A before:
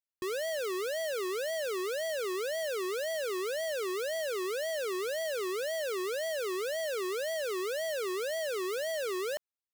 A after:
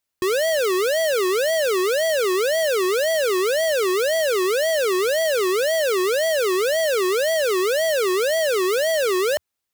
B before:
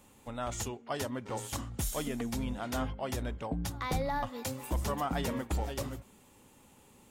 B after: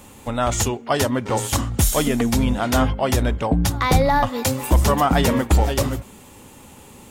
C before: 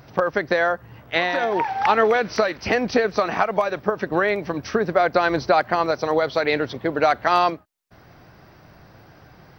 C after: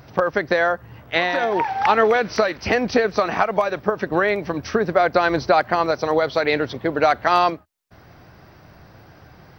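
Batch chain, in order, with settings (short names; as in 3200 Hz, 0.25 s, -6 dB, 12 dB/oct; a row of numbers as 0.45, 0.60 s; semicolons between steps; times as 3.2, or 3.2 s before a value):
bell 81 Hz +4 dB 0.49 oct; match loudness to -20 LUFS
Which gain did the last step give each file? +13.5, +15.5, +1.0 dB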